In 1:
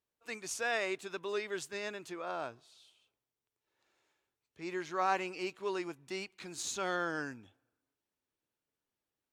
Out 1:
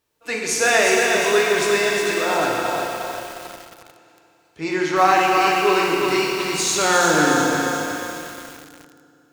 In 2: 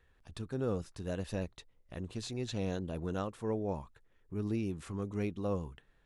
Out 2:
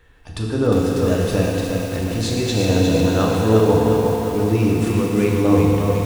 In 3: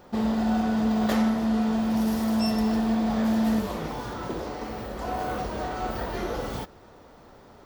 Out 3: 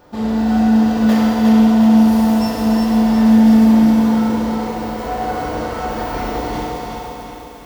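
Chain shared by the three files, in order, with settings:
FDN reverb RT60 3 s, high-frequency decay 1×, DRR -3 dB; bit-crushed delay 357 ms, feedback 55%, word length 8-bit, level -4 dB; peak normalisation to -3 dBFS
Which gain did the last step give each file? +14.5 dB, +14.0 dB, +1.5 dB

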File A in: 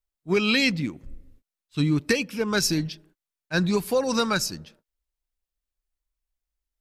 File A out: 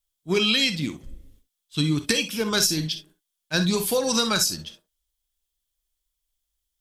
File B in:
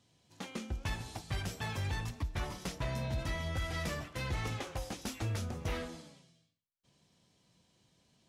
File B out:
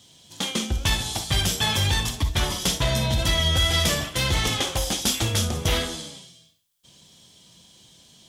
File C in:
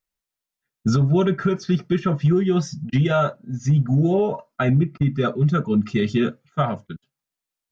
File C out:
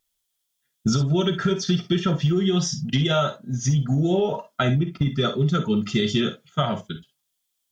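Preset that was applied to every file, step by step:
tone controls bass 0 dB, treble +10 dB; wow and flutter 18 cents; peaking EQ 3.3 kHz +11 dB 0.26 oct; compression, threshold -19 dBFS; gated-style reverb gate 80 ms rising, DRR 8.5 dB; normalise loudness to -23 LUFS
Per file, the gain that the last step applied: +0.5 dB, +12.0 dB, +1.0 dB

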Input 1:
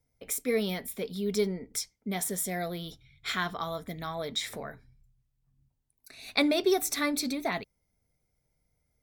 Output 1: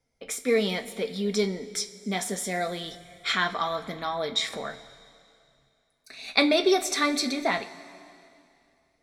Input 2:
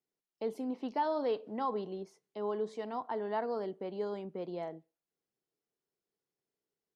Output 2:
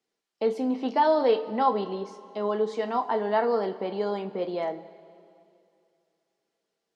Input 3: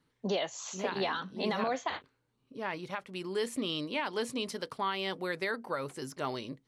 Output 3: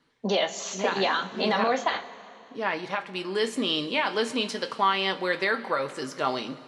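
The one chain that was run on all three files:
low-pass 6.7 kHz 12 dB/octave; bass shelf 180 Hz -11.5 dB; two-slope reverb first 0.21 s, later 2.6 s, from -18 dB, DRR 6 dB; normalise loudness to -27 LUFS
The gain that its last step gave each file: +5.5 dB, +11.0 dB, +8.0 dB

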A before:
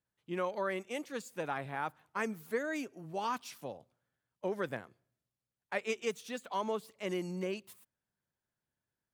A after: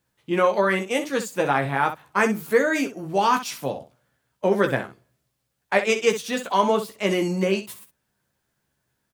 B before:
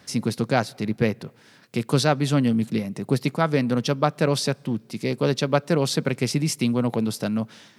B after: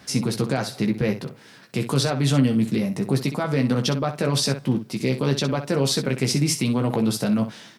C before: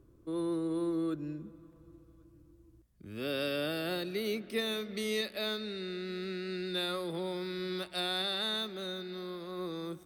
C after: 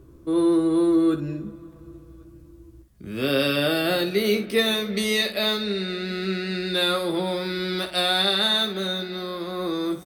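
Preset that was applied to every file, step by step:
peak limiter -16.5 dBFS; early reflections 15 ms -5.5 dB, 63 ms -10.5 dB; normalise loudness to -23 LUFS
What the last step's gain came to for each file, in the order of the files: +14.0 dB, +3.5 dB, +11.0 dB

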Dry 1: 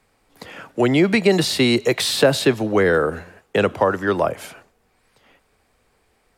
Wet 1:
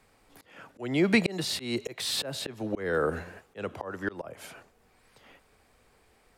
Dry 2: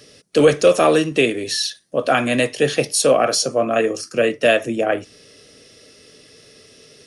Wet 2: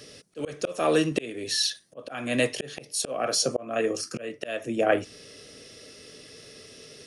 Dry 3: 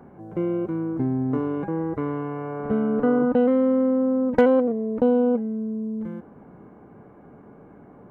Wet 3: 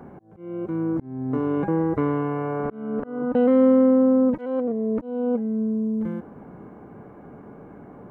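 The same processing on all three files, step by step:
slow attack 602 ms; peak normalisation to -9 dBFS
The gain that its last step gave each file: -0.5 dB, 0.0 dB, +4.0 dB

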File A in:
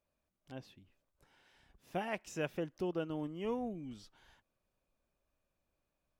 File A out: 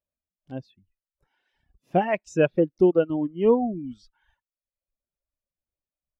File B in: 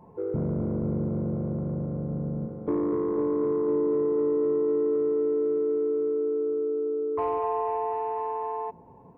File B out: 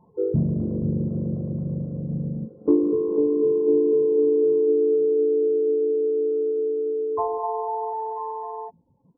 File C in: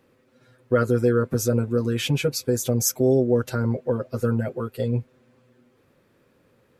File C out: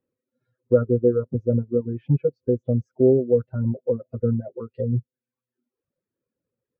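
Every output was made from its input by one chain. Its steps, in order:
low-pass that closes with the level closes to 950 Hz, closed at -23 dBFS; reverb removal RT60 1.1 s; spectral contrast expander 1.5:1; normalise loudness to -23 LUFS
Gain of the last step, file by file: +16.0 dB, +11.0 dB, +4.0 dB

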